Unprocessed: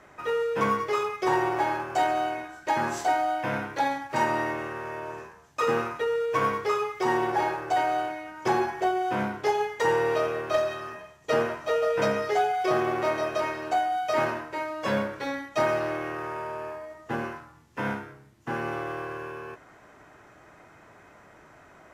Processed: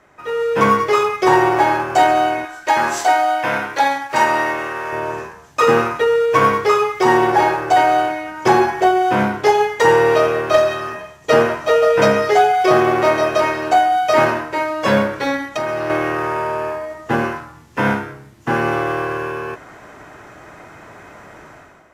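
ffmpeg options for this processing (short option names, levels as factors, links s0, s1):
-filter_complex "[0:a]asettb=1/sr,asplit=3[s0][s1][s2];[s0]atrim=end=2.454[s3];[s1]atrim=start=2.45:end=4.93,asetpts=PTS-STARTPTS,afade=t=in:d=0.004:c=qsin,afade=t=out:st=2.476:d=0.004:c=qsin,equalizer=f=110:w=0.32:g=-11.5[s4];[s2]atrim=start=4.926[s5];[s3][s4]acrossfade=d=0.004:c1=hsin:c2=qsin[s6];[s6][s5]acrossfade=d=0.004:c1=qsin:c2=hsin,asettb=1/sr,asplit=3[s7][s8][s9];[s7]atrim=end=15.364[s10];[s8]atrim=start=15.36:end=15.9,asetpts=PTS-STARTPTS,afade=t=in:d=0.004:c=qsin,afade=t=out:st=0.536:d=0.004:c=qsin,acompressor=threshold=0.0282:ratio=8:attack=3.2:release=140:knee=1:detection=peak[s11];[s9]atrim=start=15.896[s12];[s10][s11]acrossfade=d=0.004:c1=hsin:c2=qsin[s13];[s13][s12]acrossfade=d=0.004:c1=qsin:c2=hsin,dynaudnorm=f=120:g=7:m=4.47"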